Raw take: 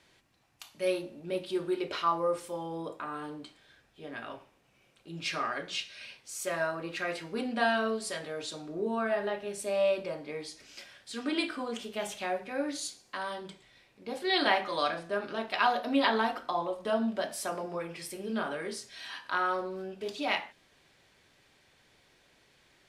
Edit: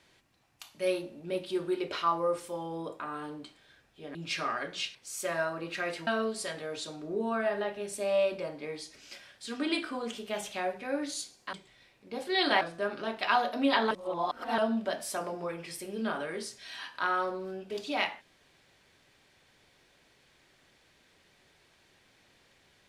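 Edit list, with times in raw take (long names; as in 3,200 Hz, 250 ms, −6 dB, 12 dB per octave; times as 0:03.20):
0:04.15–0:05.10: remove
0:05.90–0:06.17: remove
0:07.29–0:07.73: remove
0:13.19–0:13.48: remove
0:14.56–0:14.92: remove
0:16.22–0:16.89: reverse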